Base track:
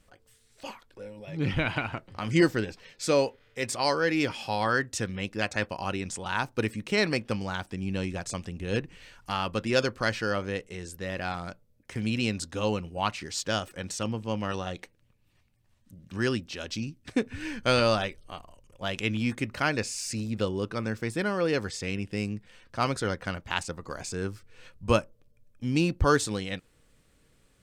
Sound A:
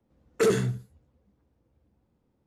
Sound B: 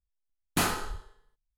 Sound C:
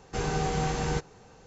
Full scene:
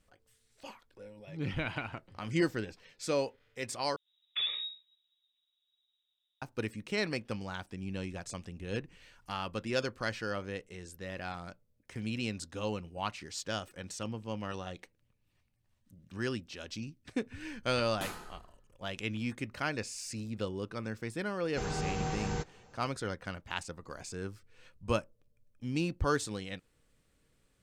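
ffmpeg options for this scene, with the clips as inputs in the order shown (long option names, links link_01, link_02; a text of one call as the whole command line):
ffmpeg -i bed.wav -i cue0.wav -i cue1.wav -i cue2.wav -filter_complex "[0:a]volume=-7.5dB[link_01];[1:a]lowpass=frequency=3300:width_type=q:width=0.5098,lowpass=frequency=3300:width_type=q:width=0.6013,lowpass=frequency=3300:width_type=q:width=0.9,lowpass=frequency=3300:width_type=q:width=2.563,afreqshift=-3900[link_02];[2:a]asplit=2[link_03][link_04];[link_04]adelay=178,lowpass=frequency=1200:poles=1,volume=-13.5dB,asplit=2[link_05][link_06];[link_06]adelay=178,lowpass=frequency=1200:poles=1,volume=0.28,asplit=2[link_07][link_08];[link_08]adelay=178,lowpass=frequency=1200:poles=1,volume=0.28[link_09];[link_03][link_05][link_07][link_09]amix=inputs=4:normalize=0[link_10];[link_01]asplit=2[link_11][link_12];[link_11]atrim=end=3.964[link_13];[link_02]atrim=end=2.46,asetpts=PTS-STARTPTS,volume=-11.5dB[link_14];[link_12]atrim=start=6.416[link_15];[link_10]atrim=end=1.57,asetpts=PTS-STARTPTS,volume=-14.5dB,afade=type=in:duration=0.004:curve=hsin,afade=type=out:start_time=1.566:duration=0.004:curve=hsin,adelay=17440[link_16];[3:a]atrim=end=1.46,asetpts=PTS-STARTPTS,volume=-6.5dB,afade=type=in:duration=0.004:curve=hsin,afade=type=out:start_time=1.456:duration=0.004:curve=hsin,adelay=21430[link_17];[link_13][link_14]acrossfade=duration=0.004:curve1=hsin:curve2=hsin[link_18];[link_18][link_15]acrossfade=duration=0.004:curve1=hsin:curve2=hsin[link_19];[link_19][link_16][link_17]amix=inputs=3:normalize=0" out.wav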